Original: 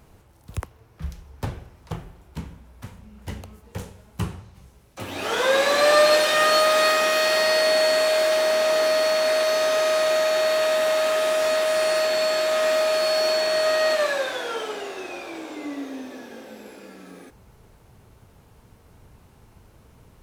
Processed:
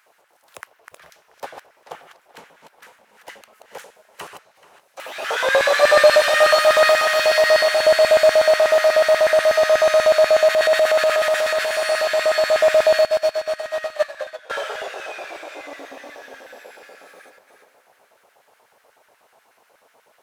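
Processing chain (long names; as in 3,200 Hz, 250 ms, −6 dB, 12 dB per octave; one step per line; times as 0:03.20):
delay that plays each chunk backwards 252 ms, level −6.5 dB
auto-filter high-pass square 8.2 Hz 610–1,600 Hz
tape delay 433 ms, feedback 48%, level −17 dB, low-pass 4,400 Hz
0:10.48–0:11.76: transient designer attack −6 dB, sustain +3 dB
0:13.01–0:14.50: expander for the loud parts 2.5 to 1, over −25 dBFS
level −1 dB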